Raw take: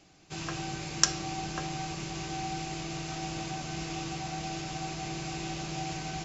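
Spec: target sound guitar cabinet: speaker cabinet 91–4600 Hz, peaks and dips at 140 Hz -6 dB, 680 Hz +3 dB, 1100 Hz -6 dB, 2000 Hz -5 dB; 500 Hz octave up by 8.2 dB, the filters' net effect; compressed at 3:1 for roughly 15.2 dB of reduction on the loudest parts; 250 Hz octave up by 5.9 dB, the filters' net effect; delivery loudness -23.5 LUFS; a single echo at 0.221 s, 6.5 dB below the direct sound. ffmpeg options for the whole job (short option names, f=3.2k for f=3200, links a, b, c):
-af "equalizer=f=250:t=o:g=6,equalizer=f=500:t=o:g=9,acompressor=threshold=-41dB:ratio=3,highpass=91,equalizer=f=140:t=q:w=4:g=-6,equalizer=f=680:t=q:w=4:g=3,equalizer=f=1.1k:t=q:w=4:g=-6,equalizer=f=2k:t=q:w=4:g=-5,lowpass=f=4.6k:w=0.5412,lowpass=f=4.6k:w=1.3066,aecho=1:1:221:0.473,volume=18.5dB"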